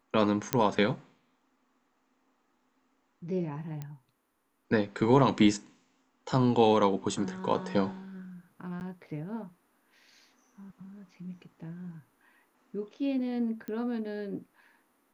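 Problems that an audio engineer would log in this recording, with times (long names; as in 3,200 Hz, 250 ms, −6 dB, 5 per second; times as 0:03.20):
0:00.53: click −8 dBFS
0:03.82: click −25 dBFS
0:08.80–0:08.81: drop-out 9.9 ms
0:13.68: click −26 dBFS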